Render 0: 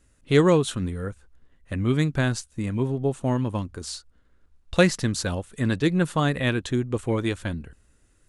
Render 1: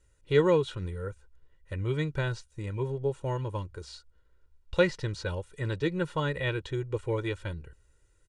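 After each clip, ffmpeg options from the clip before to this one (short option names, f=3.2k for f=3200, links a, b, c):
-filter_complex "[0:a]acrossover=split=4600[a][b];[b]acompressor=threshold=-51dB:ratio=4:attack=1:release=60[c];[a][c]amix=inputs=2:normalize=0,lowpass=9.8k,aecho=1:1:2.1:0.88,volume=-8dB"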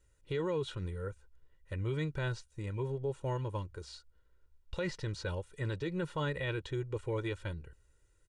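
-af "alimiter=limit=-23dB:level=0:latency=1:release=12,volume=-3.5dB"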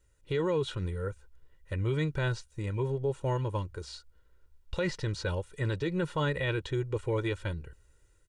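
-af "dynaudnorm=f=170:g=3:m=4dB,volume=1dB"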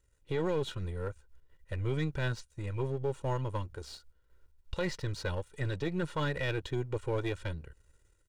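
-af "aeval=exprs='if(lt(val(0),0),0.447*val(0),val(0))':c=same"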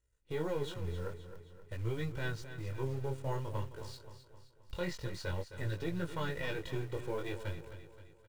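-filter_complex "[0:a]flanger=delay=17.5:depth=5.6:speed=0.5,asplit=2[a][b];[b]acrusher=bits=7:mix=0:aa=0.000001,volume=-6dB[c];[a][c]amix=inputs=2:normalize=0,aecho=1:1:263|526|789|1052|1315:0.266|0.133|0.0665|0.0333|0.0166,volume=-5dB"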